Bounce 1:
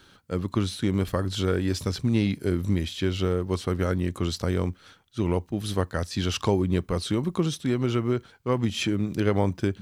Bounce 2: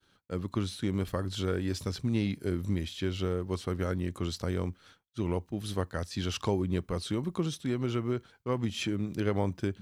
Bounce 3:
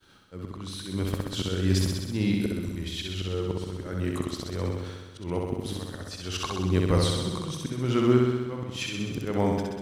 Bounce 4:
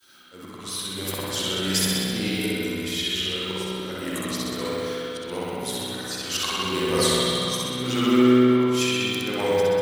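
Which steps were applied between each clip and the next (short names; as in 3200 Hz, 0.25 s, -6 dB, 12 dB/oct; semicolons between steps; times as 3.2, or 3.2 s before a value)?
expander -49 dBFS; gain -6 dB
auto swell 0.386 s; on a send: flutter echo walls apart 11 m, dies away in 1.3 s; on the sum: gain +8.5 dB
bin magnitudes rounded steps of 15 dB; RIAA curve recording; spring tank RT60 2.6 s, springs 48/52 ms, chirp 40 ms, DRR -6.5 dB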